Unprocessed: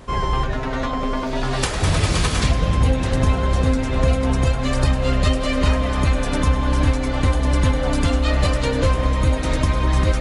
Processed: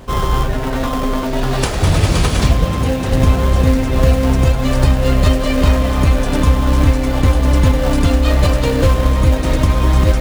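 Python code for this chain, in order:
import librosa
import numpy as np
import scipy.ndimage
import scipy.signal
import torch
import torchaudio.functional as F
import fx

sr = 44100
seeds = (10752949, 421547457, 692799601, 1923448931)

p1 = fx.highpass(x, sr, hz=150.0, slope=6, at=(2.65, 3.08))
p2 = fx.sample_hold(p1, sr, seeds[0], rate_hz=2300.0, jitter_pct=20)
p3 = p1 + (p2 * librosa.db_to_amplitude(-4.0))
y = p3 * librosa.db_to_amplitude(1.5)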